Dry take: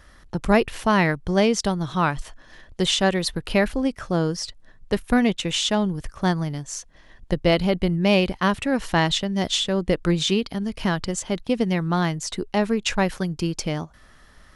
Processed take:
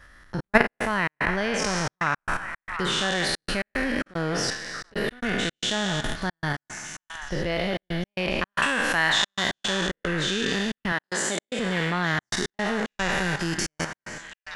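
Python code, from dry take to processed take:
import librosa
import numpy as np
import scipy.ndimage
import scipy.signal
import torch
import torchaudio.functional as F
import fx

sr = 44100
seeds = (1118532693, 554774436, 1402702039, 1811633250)

p1 = fx.spec_trails(x, sr, decay_s=1.53)
p2 = fx.level_steps(p1, sr, step_db=13)
p3 = fx.tilt_shelf(p2, sr, db=-5.0, hz=720.0, at=(8.52, 9.5))
p4 = fx.highpass(p3, sr, hz=240.0, slope=12, at=(10.92, 11.59))
p5 = p4 + fx.echo_stepped(p4, sr, ms=729, hz=1200.0, octaves=0.7, feedback_pct=70, wet_db=-7, dry=0)
p6 = fx.step_gate(p5, sr, bpm=112, pattern='xxx.x.xx.xx', floor_db=-60.0, edge_ms=4.5)
p7 = fx.peak_eq(p6, sr, hz=1700.0, db=8.0, octaves=0.83)
p8 = fx.sustainer(p7, sr, db_per_s=110.0, at=(4.06, 5.19), fade=0.02)
y = p8 * librosa.db_to_amplitude(-1.0)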